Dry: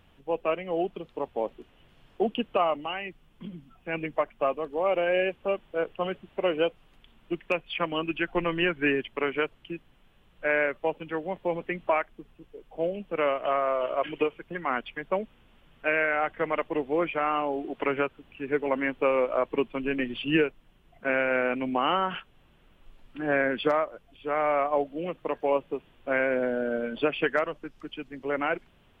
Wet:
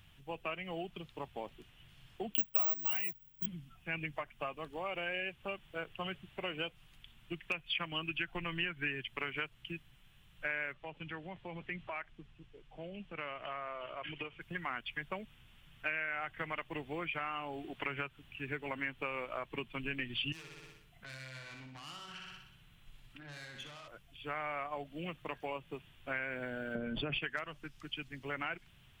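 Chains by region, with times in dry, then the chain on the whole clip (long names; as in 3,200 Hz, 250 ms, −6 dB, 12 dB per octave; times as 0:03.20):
0:02.34–0:03.46: noise gate −47 dBFS, range −8 dB + bad sample-rate conversion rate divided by 2×, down none, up zero stuff
0:10.73–0:14.41: downward compressor 2 to 1, threshold −35 dBFS + high-frequency loss of the air 85 metres
0:20.32–0:23.88: tube saturation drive 28 dB, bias 0.45 + repeating echo 61 ms, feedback 56%, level −5.5 dB + downward compressor, threshold −43 dBFS
0:26.75–0:27.19: tilt shelving filter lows +8 dB, about 1,200 Hz + envelope flattener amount 50%
whole clip: graphic EQ with 10 bands 125 Hz +8 dB, 250 Hz −6 dB, 500 Hz −10 dB, 1,000 Hz −3 dB; downward compressor 5 to 1, threshold −34 dBFS; high-shelf EQ 2,300 Hz +8.5 dB; level −3 dB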